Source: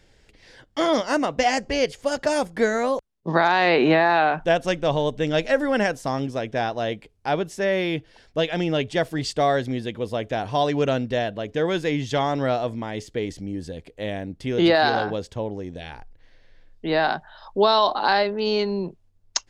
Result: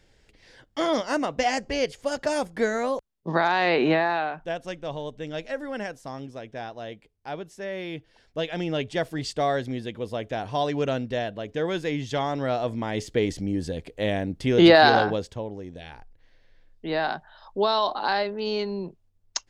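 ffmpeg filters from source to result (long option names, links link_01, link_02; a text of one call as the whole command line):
ffmpeg -i in.wav -af "volume=11dB,afade=type=out:start_time=3.91:duration=0.44:silence=0.421697,afade=type=in:start_time=7.71:duration=1.11:silence=0.446684,afade=type=in:start_time=12.47:duration=0.64:silence=0.421697,afade=type=out:start_time=14.95:duration=0.48:silence=0.375837" out.wav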